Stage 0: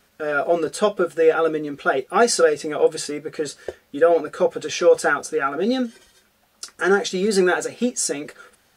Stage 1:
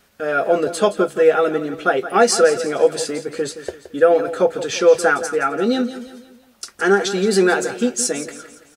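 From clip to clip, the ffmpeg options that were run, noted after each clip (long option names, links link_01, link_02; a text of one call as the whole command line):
ffmpeg -i in.wav -af "aecho=1:1:170|340|510|680:0.224|0.0963|0.0414|0.0178,volume=2.5dB" out.wav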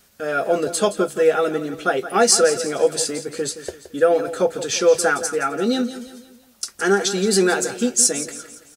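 ffmpeg -i in.wav -af "bass=frequency=250:gain=3,treble=frequency=4000:gain=9,volume=-3dB" out.wav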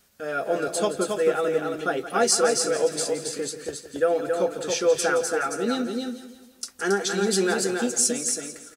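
ffmpeg -i in.wav -af "aecho=1:1:274:0.596,volume=-6dB" out.wav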